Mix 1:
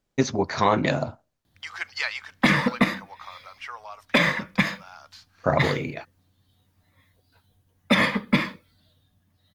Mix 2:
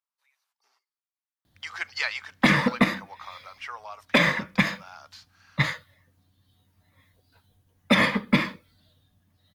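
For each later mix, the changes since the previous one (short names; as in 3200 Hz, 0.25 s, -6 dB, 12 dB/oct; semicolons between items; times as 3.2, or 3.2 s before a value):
first voice: muted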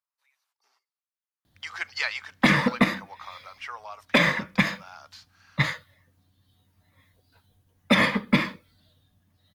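none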